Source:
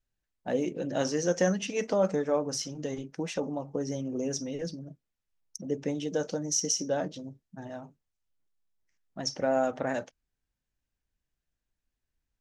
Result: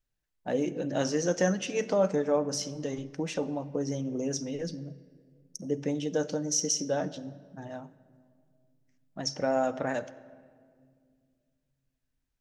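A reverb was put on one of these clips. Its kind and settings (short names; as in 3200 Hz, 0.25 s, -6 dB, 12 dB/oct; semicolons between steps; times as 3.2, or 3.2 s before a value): shoebox room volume 3700 m³, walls mixed, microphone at 0.44 m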